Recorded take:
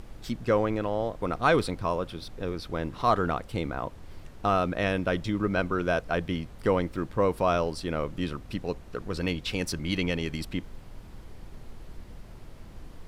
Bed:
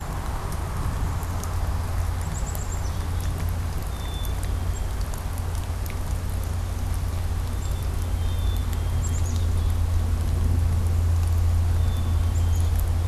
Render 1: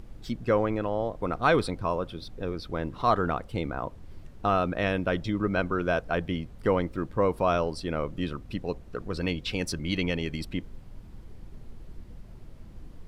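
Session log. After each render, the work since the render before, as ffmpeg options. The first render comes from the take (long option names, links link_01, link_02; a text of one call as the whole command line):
ffmpeg -i in.wav -af "afftdn=noise_reduction=7:noise_floor=-46" out.wav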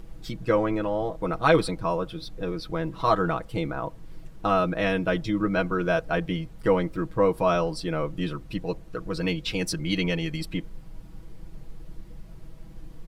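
ffmpeg -i in.wav -af "highshelf=frequency=7500:gain=4.5,aecho=1:1:6.2:0.76" out.wav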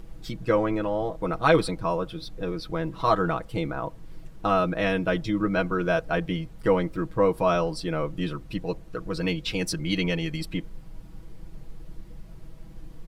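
ffmpeg -i in.wav -af anull out.wav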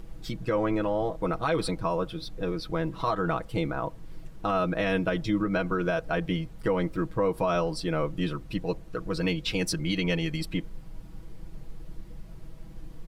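ffmpeg -i in.wav -af "alimiter=limit=-17dB:level=0:latency=1:release=107" out.wav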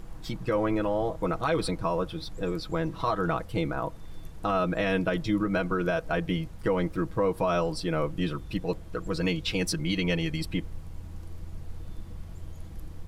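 ffmpeg -i in.wav -i bed.wav -filter_complex "[1:a]volume=-22.5dB[link_01];[0:a][link_01]amix=inputs=2:normalize=0" out.wav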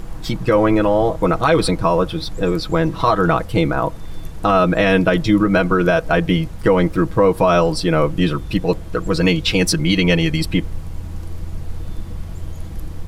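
ffmpeg -i in.wav -af "volume=12dB" out.wav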